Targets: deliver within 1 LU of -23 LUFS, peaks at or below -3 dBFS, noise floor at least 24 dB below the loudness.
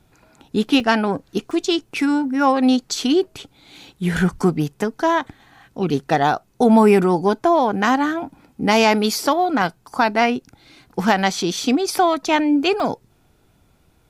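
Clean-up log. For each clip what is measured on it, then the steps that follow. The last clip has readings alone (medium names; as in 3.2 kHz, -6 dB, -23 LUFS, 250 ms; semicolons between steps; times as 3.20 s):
dropouts 3; longest dropout 1.7 ms; loudness -19.0 LUFS; peak level -4.0 dBFS; loudness target -23.0 LUFS
-> interpolate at 0.80/1.51/12.80 s, 1.7 ms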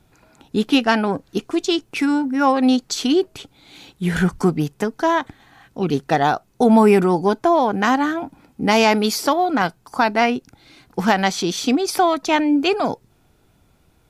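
dropouts 0; loudness -19.0 LUFS; peak level -4.0 dBFS; loudness target -23.0 LUFS
-> trim -4 dB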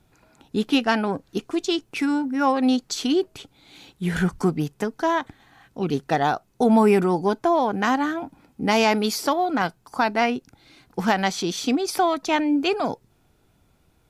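loudness -23.0 LUFS; peak level -8.0 dBFS; noise floor -63 dBFS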